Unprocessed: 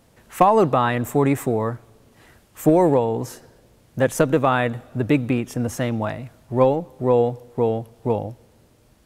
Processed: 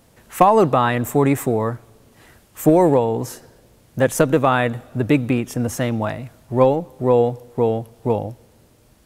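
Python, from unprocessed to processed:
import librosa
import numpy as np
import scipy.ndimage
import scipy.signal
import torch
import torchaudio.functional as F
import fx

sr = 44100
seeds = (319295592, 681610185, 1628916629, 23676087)

y = fx.high_shelf(x, sr, hz=7500.0, db=4.0)
y = y * librosa.db_to_amplitude(2.0)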